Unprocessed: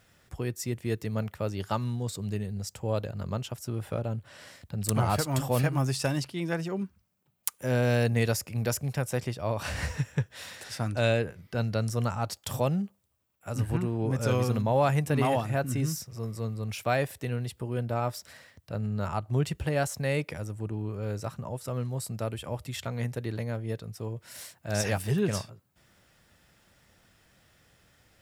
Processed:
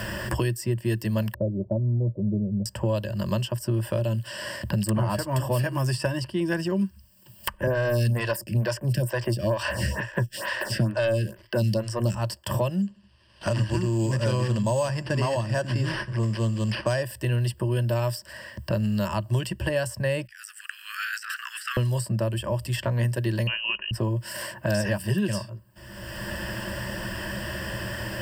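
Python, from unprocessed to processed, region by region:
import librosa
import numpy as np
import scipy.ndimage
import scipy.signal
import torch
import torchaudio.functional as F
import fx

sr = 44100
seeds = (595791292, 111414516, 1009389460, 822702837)

y = fx.chain(x, sr, fx.block_float(bits=7),
    fx.steep_lowpass(hz=650.0, slope=48), at=(1.34, 2.66))
y = fx.chain(y, sr, fx.highpass(hz=68.0, slope=24),
    fx.leveller(passes=2),
    fx.stagger_phaser(hz=2.2), at=(7.67, 12.15))
y = fx.chain(y, sr, fx.sample_hold(seeds[0], rate_hz=7300.0, jitter_pct=0),
    fx.air_absorb(metres=85.0),
    fx.echo_feedback(ms=70, feedback_pct=42, wet_db=-22), at=(12.82, 17.03))
y = fx.chain(y, sr, fx.steep_highpass(hz=1300.0, slope=96),
    fx.over_compress(threshold_db=-53.0, ratio=-1.0), at=(20.25, 21.77))
y = fx.chain(y, sr, fx.highpass(hz=200.0, slope=12),
    fx.freq_invert(carrier_hz=3000), at=(23.47, 23.91))
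y = fx.ripple_eq(y, sr, per_octave=1.3, db=14)
y = fx.band_squash(y, sr, depth_pct=100)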